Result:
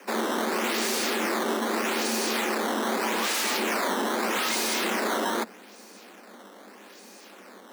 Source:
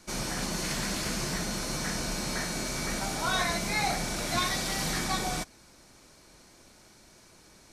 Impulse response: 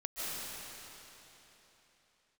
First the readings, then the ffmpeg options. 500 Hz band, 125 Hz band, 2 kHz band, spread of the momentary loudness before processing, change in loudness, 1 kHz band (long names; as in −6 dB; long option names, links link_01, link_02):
+8.5 dB, below −10 dB, +4.5 dB, 4 LU, +4.0 dB, +5.5 dB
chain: -af "acrusher=samples=11:mix=1:aa=0.000001:lfo=1:lforange=17.6:lforate=0.81,aeval=exprs='0.0316*(abs(mod(val(0)/0.0316+3,4)-2)-1)':channel_layout=same,afreqshift=190,volume=8dB"